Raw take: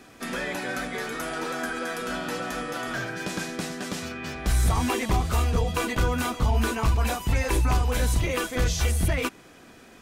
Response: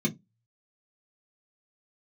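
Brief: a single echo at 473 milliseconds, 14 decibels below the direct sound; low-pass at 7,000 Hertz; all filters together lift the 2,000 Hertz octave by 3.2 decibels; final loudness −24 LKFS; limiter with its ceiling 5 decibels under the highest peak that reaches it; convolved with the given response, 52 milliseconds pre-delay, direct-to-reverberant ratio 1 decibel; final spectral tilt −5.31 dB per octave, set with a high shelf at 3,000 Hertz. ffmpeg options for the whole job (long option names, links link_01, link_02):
-filter_complex "[0:a]lowpass=7000,equalizer=frequency=2000:width_type=o:gain=6,highshelf=frequency=3000:gain=-5,alimiter=limit=-18dB:level=0:latency=1,aecho=1:1:473:0.2,asplit=2[link_01][link_02];[1:a]atrim=start_sample=2205,adelay=52[link_03];[link_02][link_03]afir=irnorm=-1:irlink=0,volume=-8dB[link_04];[link_01][link_04]amix=inputs=2:normalize=0,volume=-2.5dB"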